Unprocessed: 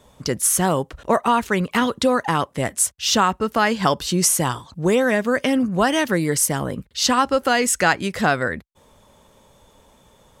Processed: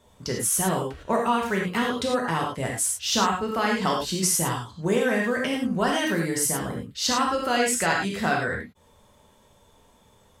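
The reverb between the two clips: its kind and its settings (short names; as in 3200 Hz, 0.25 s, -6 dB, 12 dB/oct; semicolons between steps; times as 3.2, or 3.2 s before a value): non-linear reverb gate 0.13 s flat, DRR -1 dB; gain -8 dB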